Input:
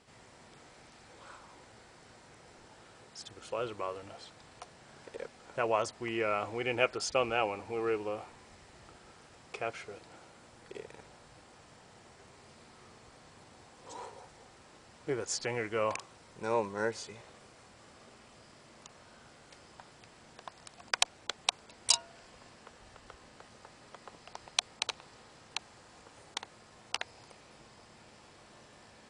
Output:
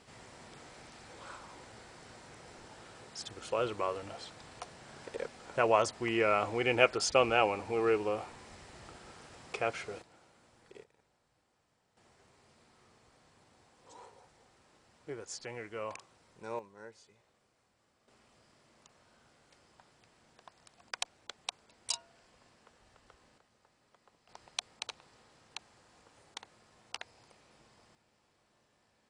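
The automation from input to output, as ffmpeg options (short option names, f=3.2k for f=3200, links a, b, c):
-af "asetnsamples=n=441:p=0,asendcmd='10.02 volume volume -8dB;10.84 volume volume -19dB;11.97 volume volume -8.5dB;16.59 volume volume -17.5dB;18.08 volume volume -9dB;23.38 volume volume -15.5dB;24.29 volume volume -7dB;27.95 volume volume -16dB',volume=3.5dB"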